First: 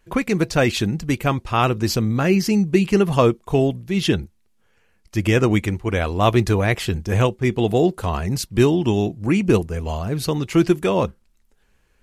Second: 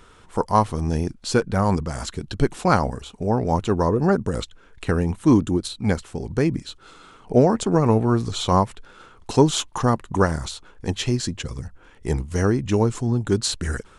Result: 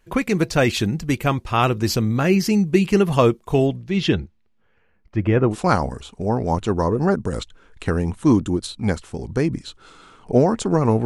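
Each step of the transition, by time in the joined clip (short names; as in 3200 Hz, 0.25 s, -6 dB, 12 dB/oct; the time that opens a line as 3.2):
first
3.66–5.56 LPF 6900 Hz -> 1200 Hz
5.52 switch to second from 2.53 s, crossfade 0.08 s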